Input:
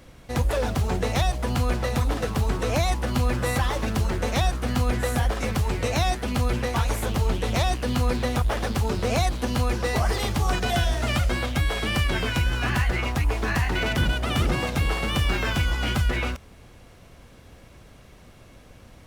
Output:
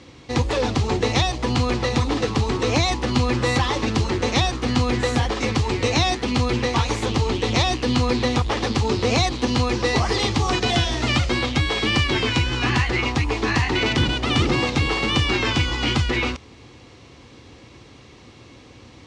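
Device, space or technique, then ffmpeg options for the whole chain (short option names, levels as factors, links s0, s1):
car door speaker: -af "highpass=100,equalizer=f=180:t=q:w=4:g=-9,equalizer=f=310:t=q:w=4:g=4,equalizer=f=630:t=q:w=4:g=-10,equalizer=f=1500:t=q:w=4:g=-8,equalizer=f=4200:t=q:w=4:g=3,lowpass=f=6800:w=0.5412,lowpass=f=6800:w=1.3066,volume=2.24"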